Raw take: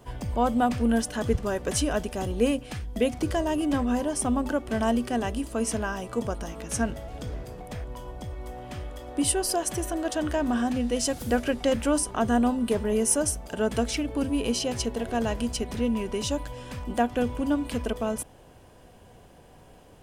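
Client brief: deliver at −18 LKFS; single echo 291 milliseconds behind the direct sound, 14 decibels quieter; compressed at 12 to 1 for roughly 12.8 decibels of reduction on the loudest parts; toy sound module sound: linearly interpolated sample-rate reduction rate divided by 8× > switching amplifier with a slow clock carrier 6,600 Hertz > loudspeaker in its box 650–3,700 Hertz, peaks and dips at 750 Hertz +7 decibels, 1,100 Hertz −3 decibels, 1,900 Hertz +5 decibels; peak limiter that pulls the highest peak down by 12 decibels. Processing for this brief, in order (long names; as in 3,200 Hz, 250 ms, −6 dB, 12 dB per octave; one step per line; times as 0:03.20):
downward compressor 12 to 1, threshold −31 dBFS
brickwall limiter −31 dBFS
single-tap delay 291 ms −14 dB
linearly interpolated sample-rate reduction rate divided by 8×
switching amplifier with a slow clock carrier 6,600 Hz
loudspeaker in its box 650–3,700 Hz, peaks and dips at 750 Hz +7 dB, 1,100 Hz −3 dB, 1,900 Hz +5 dB
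level +27.5 dB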